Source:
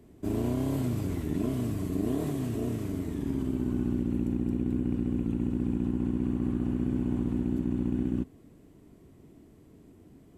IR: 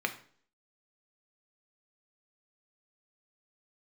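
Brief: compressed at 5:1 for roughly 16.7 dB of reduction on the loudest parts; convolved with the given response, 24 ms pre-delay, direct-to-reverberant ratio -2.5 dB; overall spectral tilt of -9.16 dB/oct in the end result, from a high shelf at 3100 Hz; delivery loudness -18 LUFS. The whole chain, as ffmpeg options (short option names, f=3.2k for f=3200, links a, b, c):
-filter_complex "[0:a]highshelf=f=3.1k:g=-6.5,acompressor=threshold=-44dB:ratio=5,asplit=2[a][b];[1:a]atrim=start_sample=2205,adelay=24[c];[b][c]afir=irnorm=-1:irlink=0,volume=-4.5dB[d];[a][d]amix=inputs=2:normalize=0,volume=26.5dB"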